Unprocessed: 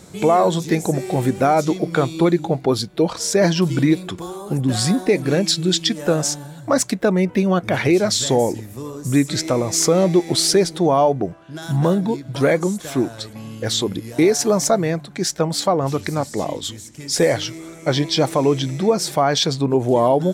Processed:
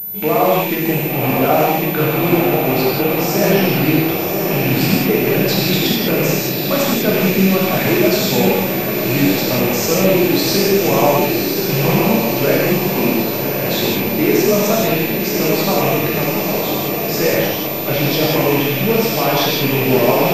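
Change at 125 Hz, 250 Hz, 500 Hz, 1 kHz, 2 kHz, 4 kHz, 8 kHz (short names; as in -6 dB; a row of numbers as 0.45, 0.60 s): +3.0, +3.5, +3.0, +3.0, +8.5, +2.5, -1.5 dB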